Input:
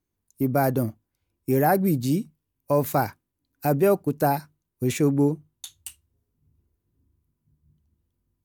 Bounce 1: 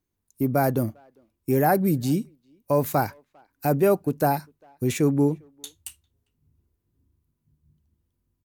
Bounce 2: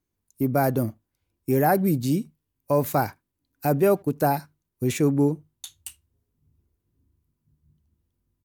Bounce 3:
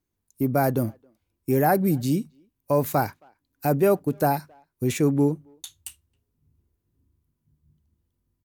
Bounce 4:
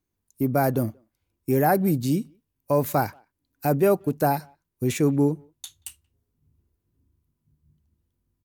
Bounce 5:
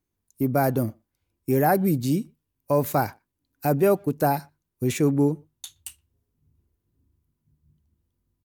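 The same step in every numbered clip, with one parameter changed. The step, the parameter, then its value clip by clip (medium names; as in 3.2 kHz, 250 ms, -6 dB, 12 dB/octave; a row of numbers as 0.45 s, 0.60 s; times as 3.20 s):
speakerphone echo, time: 400 ms, 80 ms, 270 ms, 180 ms, 120 ms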